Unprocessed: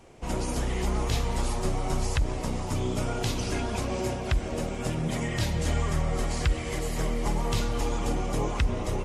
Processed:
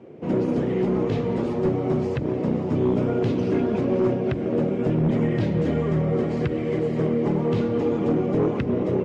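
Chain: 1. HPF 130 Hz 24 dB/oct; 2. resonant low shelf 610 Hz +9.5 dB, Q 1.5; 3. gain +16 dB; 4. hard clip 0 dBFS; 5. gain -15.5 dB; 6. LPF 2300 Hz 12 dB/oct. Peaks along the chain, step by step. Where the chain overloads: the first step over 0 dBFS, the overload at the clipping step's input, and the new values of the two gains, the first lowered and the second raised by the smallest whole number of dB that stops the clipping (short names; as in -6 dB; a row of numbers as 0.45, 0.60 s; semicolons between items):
-13.0, -8.5, +7.5, 0.0, -15.5, -15.0 dBFS; step 3, 7.5 dB; step 3 +8 dB, step 5 -7.5 dB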